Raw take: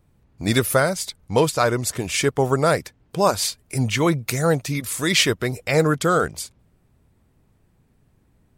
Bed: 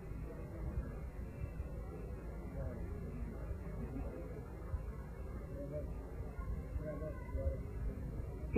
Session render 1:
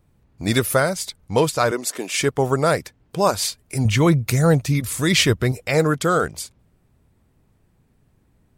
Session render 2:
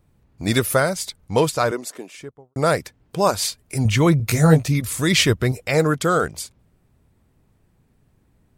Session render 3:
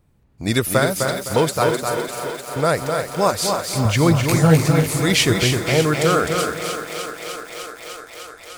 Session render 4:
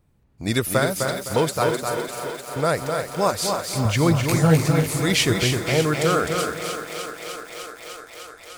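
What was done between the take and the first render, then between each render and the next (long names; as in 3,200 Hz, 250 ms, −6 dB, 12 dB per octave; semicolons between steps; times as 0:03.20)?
0:01.71–0:02.18: high-pass filter 240 Hz 24 dB per octave; 0:03.85–0:05.52: parametric band 68 Hz +10.5 dB 2.9 octaves
0:01.45–0:02.56: fade out and dull; 0:04.18–0:04.68: double-tracking delay 19 ms −3 dB
feedback echo with a high-pass in the loop 302 ms, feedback 84%, high-pass 200 Hz, level −10 dB; feedback echo at a low word length 256 ms, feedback 35%, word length 6 bits, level −4.5 dB
level −3 dB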